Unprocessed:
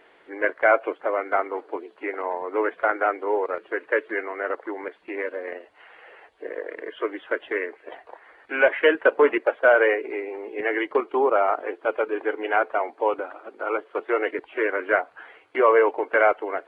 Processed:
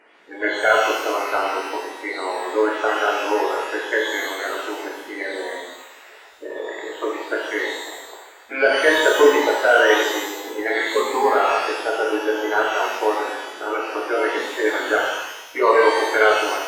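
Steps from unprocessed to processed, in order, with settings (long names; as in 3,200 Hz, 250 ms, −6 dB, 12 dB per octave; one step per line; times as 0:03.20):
spectral magnitudes quantised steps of 30 dB
reverb with rising layers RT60 1 s, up +12 semitones, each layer −8 dB, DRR −2.5 dB
level −1 dB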